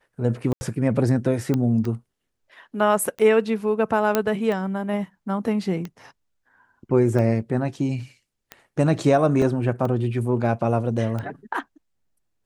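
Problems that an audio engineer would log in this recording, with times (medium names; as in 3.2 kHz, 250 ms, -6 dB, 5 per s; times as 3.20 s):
tick 45 rpm -18 dBFS
0.53–0.61 s: dropout 80 ms
1.54 s: pop -12 dBFS
4.15 s: pop -5 dBFS
9.42 s: dropout 2.5 ms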